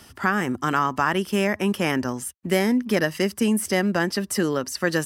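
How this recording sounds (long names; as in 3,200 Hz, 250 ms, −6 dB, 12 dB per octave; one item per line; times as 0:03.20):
background noise floor −50 dBFS
spectral slope −4.5 dB per octave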